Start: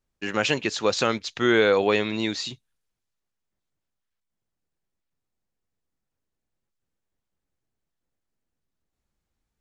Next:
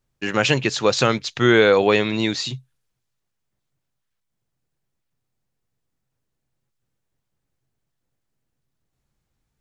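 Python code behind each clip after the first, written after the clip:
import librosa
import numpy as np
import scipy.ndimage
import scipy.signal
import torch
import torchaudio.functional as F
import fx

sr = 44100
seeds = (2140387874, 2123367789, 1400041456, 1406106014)

y = fx.peak_eq(x, sr, hz=130.0, db=12.0, octaves=0.29)
y = F.gain(torch.from_numpy(y), 4.5).numpy()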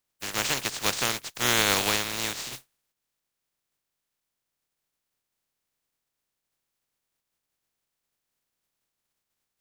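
y = fx.spec_flatten(x, sr, power=0.2)
y = F.gain(torch.from_numpy(y), -8.5).numpy()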